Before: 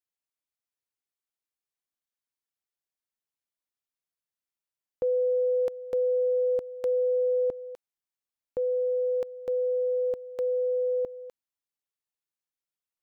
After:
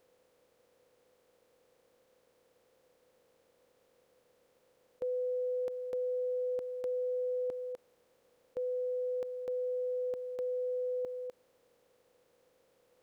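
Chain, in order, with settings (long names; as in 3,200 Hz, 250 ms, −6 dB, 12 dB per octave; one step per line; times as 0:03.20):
compressor on every frequency bin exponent 0.4
low-shelf EQ 68 Hz −7.5 dB
level −9 dB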